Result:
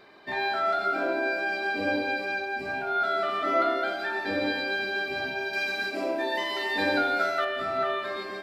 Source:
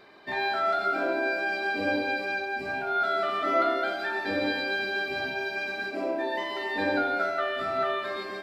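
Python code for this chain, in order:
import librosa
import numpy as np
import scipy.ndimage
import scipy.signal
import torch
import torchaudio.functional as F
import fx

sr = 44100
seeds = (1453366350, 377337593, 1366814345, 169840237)

y = fx.high_shelf(x, sr, hz=2700.0, db=9.5, at=(5.53, 7.45))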